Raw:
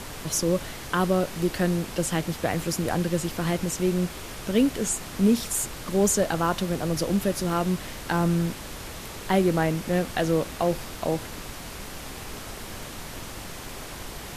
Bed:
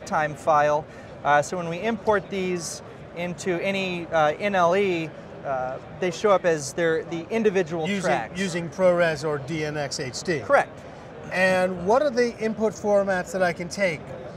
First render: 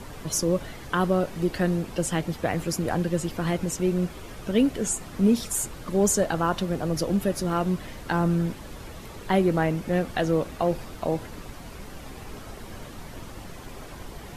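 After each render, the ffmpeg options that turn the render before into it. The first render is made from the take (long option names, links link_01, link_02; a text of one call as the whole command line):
ffmpeg -i in.wav -af "afftdn=noise_reduction=9:noise_floor=-39" out.wav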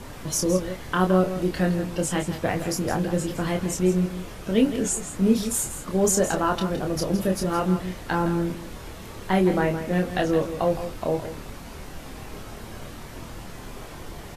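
ffmpeg -i in.wav -filter_complex "[0:a]asplit=2[link_01][link_02];[link_02]adelay=27,volume=-4.5dB[link_03];[link_01][link_03]amix=inputs=2:normalize=0,asplit=2[link_04][link_05];[link_05]aecho=0:1:165:0.282[link_06];[link_04][link_06]amix=inputs=2:normalize=0" out.wav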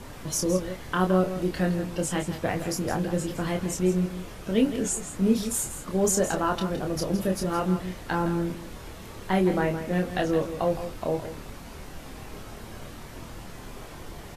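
ffmpeg -i in.wav -af "volume=-2.5dB" out.wav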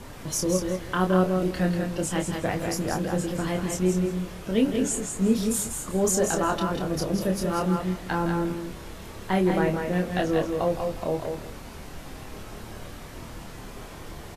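ffmpeg -i in.wav -af "aecho=1:1:192:0.422" out.wav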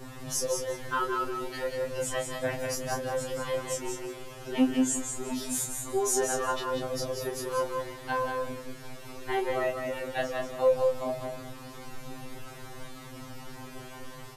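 ffmpeg -i in.wav -filter_complex "[0:a]acrossover=split=530|900[link_01][link_02][link_03];[link_01]asoftclip=type=tanh:threshold=-22dB[link_04];[link_04][link_02][link_03]amix=inputs=3:normalize=0,afftfilt=real='re*2.45*eq(mod(b,6),0)':imag='im*2.45*eq(mod(b,6),0)':win_size=2048:overlap=0.75" out.wav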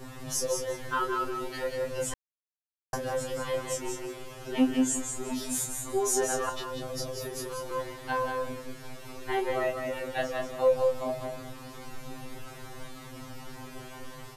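ffmpeg -i in.wav -filter_complex "[0:a]asettb=1/sr,asplit=3[link_01][link_02][link_03];[link_01]atrim=end=6.494[link_04];[link_02]atrim=start=6.49:end=7.71,asetpts=PTS-STARTPTS,afade=type=in:duration=0.004:curve=qsin,afade=type=out:start_time=1.216:duration=0.004:curve=qsin,acrossover=split=180|3000[link_05][link_06][link_07];[link_06]acompressor=threshold=-34dB:ratio=6:attack=3.2:release=140:knee=2.83:detection=peak[link_08];[link_05][link_08][link_07]amix=inputs=3:normalize=0[link_09];[link_03]atrim=start=7.706[link_10];[link_04][link_09]acrossfade=duration=0.004:curve1=hsin:curve2=qsin[link_11];[link_11][link_10]acrossfade=duration=0.004:curve1=qsin:curve2=hsin,asplit=3[link_12][link_13][link_14];[link_12]atrim=end=2.14,asetpts=PTS-STARTPTS,afade=type=out:start_time=2.136:duration=0.004:curve=hsin[link_15];[link_13]atrim=start=2.14:end=2.93,asetpts=PTS-STARTPTS,volume=0[link_16];[link_14]atrim=start=2.93,asetpts=PTS-STARTPTS,afade=type=in:duration=0.004:curve=hsin[link_17];[link_15][link_16][link_17]concat=n=3:v=0:a=1" out.wav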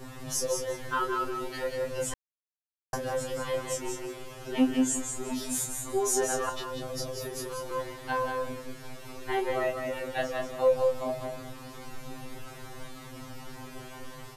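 ffmpeg -i in.wav -af anull out.wav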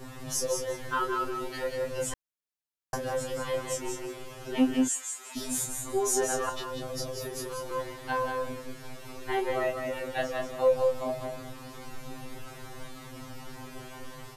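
ffmpeg -i in.wav -filter_complex "[0:a]asplit=3[link_01][link_02][link_03];[link_01]afade=type=out:start_time=4.87:duration=0.02[link_04];[link_02]highpass=1400,afade=type=in:start_time=4.87:duration=0.02,afade=type=out:start_time=5.35:duration=0.02[link_05];[link_03]afade=type=in:start_time=5.35:duration=0.02[link_06];[link_04][link_05][link_06]amix=inputs=3:normalize=0" out.wav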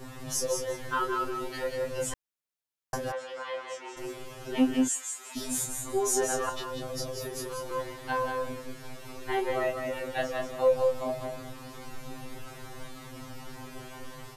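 ffmpeg -i in.wav -filter_complex "[0:a]asplit=3[link_01][link_02][link_03];[link_01]afade=type=out:start_time=3.11:duration=0.02[link_04];[link_02]highpass=660,lowpass=3500,afade=type=in:start_time=3.11:duration=0.02,afade=type=out:start_time=3.96:duration=0.02[link_05];[link_03]afade=type=in:start_time=3.96:duration=0.02[link_06];[link_04][link_05][link_06]amix=inputs=3:normalize=0" out.wav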